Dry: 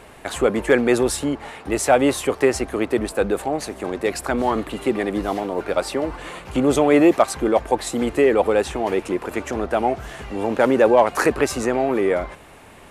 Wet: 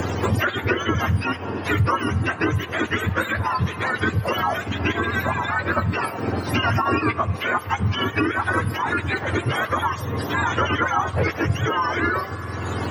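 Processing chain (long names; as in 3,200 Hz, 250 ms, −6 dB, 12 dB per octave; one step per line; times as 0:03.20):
frequency axis turned over on the octave scale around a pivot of 900 Hz
high-shelf EQ 11,000 Hz −8 dB
formants moved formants −2 semitones
on a send at −17.5 dB: convolution reverb RT60 2.3 s, pre-delay 44 ms
on the sum: multiband upward and downward compressor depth 100%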